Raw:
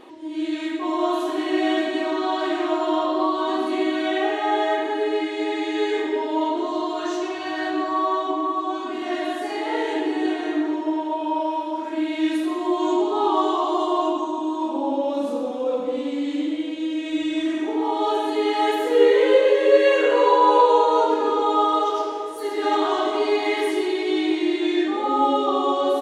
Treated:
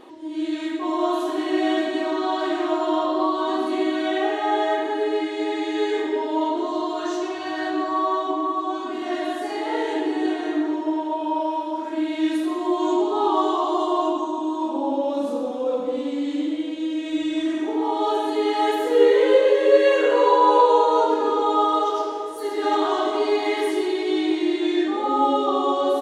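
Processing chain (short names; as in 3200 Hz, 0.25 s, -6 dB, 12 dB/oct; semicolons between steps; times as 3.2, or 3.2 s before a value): bell 2400 Hz -3.5 dB 0.68 oct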